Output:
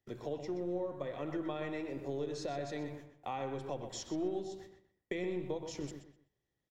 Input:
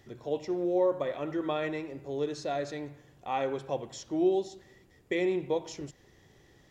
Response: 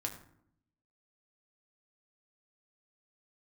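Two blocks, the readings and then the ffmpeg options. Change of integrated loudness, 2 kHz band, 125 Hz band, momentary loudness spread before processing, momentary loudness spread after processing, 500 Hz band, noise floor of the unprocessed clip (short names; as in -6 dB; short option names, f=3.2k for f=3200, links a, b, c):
-8.0 dB, -7.5 dB, -2.0 dB, 14 LU, 8 LU, -8.5 dB, -61 dBFS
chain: -filter_complex "[0:a]agate=range=-29dB:threshold=-53dB:ratio=16:detection=peak,acrossover=split=200[a][b];[a]aeval=exprs='clip(val(0),-1,0.00133)':c=same[c];[b]acompressor=threshold=-39dB:ratio=6[d];[c][d]amix=inputs=2:normalize=0,asplit=2[e][f];[f]adelay=125,lowpass=f=3.9k:p=1,volume=-8dB,asplit=2[g][h];[h]adelay=125,lowpass=f=3.9k:p=1,volume=0.28,asplit=2[i][j];[j]adelay=125,lowpass=f=3.9k:p=1,volume=0.28[k];[e][g][i][k]amix=inputs=4:normalize=0,volume=1.5dB"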